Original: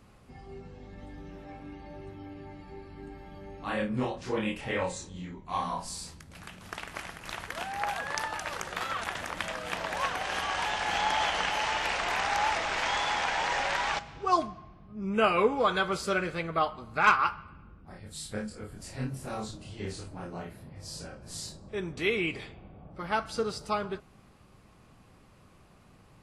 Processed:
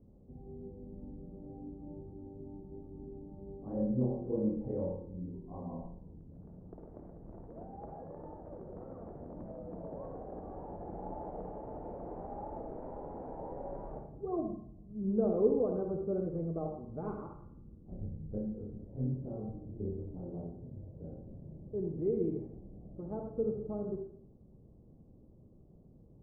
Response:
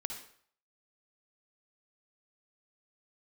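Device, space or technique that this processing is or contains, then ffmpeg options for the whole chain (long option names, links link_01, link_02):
next room: -filter_complex "[0:a]asettb=1/sr,asplit=3[link_01][link_02][link_03];[link_01]atrim=end=17.914[link_04];[link_02]atrim=start=17.91:end=18.32,asetpts=PTS-STARTPTS,afade=type=in:duration=0.004:curve=qsin,afade=type=out:start_time=0.406:duration=0.004:curve=qsin,lowshelf=frequency=210:gain=10[link_05];[link_03]atrim=start=18.316[link_06];[link_04][link_05]acrossfade=duration=0.004:curve1=hsin:curve2=qsin[link_07];[link_07][link_06]acrossfade=duration=0.004:curve1=qsin:curve2=hsin,lowpass=frequency=510:width=0.5412,lowpass=frequency=510:width=1.3066[link_08];[1:a]atrim=start_sample=2205[link_09];[link_08][link_09]afir=irnorm=-1:irlink=0"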